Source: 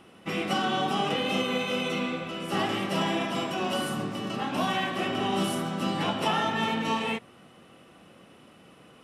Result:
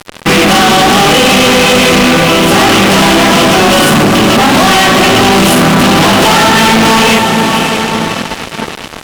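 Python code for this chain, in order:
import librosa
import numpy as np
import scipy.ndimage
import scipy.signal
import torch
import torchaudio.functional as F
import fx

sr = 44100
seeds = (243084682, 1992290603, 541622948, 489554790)

y = fx.echo_diffused(x, sr, ms=584, feedback_pct=51, wet_db=-14.5)
y = fx.fuzz(y, sr, gain_db=45.0, gate_db=-47.0)
y = fx.doppler_dist(y, sr, depth_ms=0.16)
y = F.gain(torch.from_numpy(y), 8.0).numpy()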